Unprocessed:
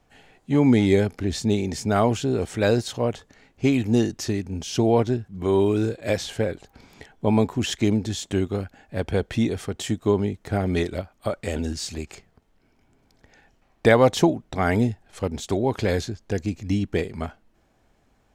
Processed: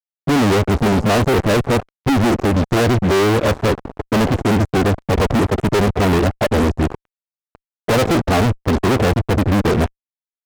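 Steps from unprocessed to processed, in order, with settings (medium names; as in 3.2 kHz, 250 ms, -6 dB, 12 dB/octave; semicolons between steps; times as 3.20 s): time stretch by phase-locked vocoder 0.57×; elliptic low-pass 750 Hz, stop band 40 dB; fuzz box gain 45 dB, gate -49 dBFS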